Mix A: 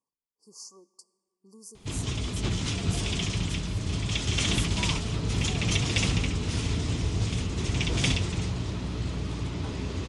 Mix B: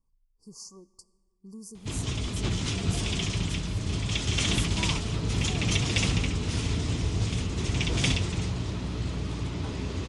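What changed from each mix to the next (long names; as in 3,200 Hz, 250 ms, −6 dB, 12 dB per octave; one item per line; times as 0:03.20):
speech: remove high-pass filter 370 Hz 12 dB per octave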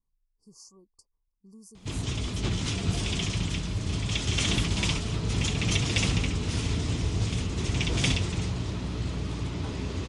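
speech −6.0 dB
reverb: off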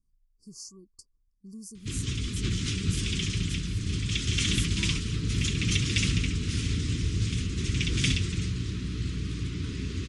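speech +7.5 dB
master: add Butterworth band-reject 730 Hz, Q 0.65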